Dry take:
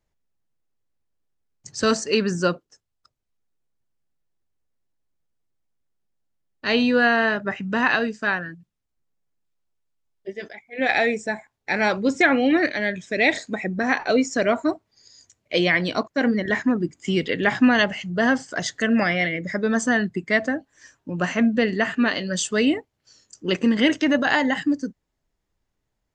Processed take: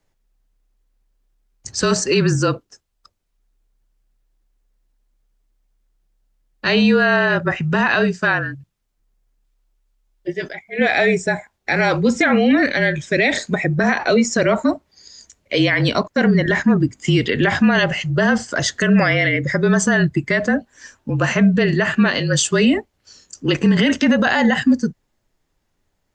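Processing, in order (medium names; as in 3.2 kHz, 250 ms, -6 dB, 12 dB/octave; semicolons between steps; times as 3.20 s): frequency shift -34 Hz; peak limiter -15.5 dBFS, peak gain reduction 10.5 dB; trim +8.5 dB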